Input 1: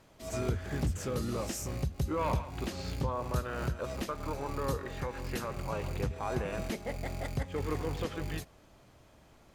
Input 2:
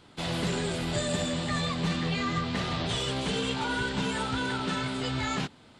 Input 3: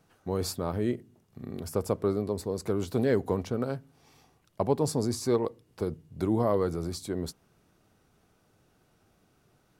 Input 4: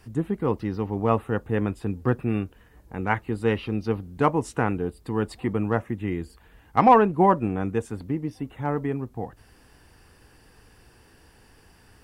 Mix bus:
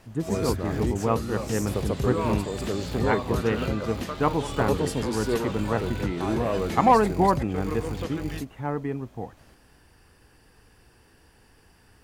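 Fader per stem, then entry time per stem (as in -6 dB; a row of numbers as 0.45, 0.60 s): +2.5, -10.0, -1.0, -2.5 dB; 0.00, 1.50, 0.00, 0.00 s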